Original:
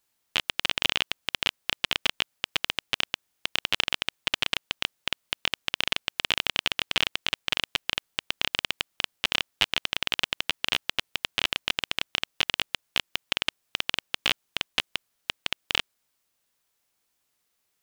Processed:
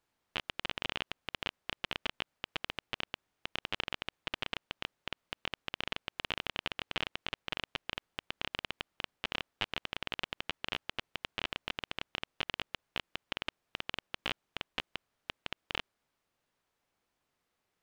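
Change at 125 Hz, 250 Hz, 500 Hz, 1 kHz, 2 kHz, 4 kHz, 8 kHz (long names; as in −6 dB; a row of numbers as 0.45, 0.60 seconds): −5.0, −5.0, −5.5, −7.0, −10.5, −12.5, −18.5 decibels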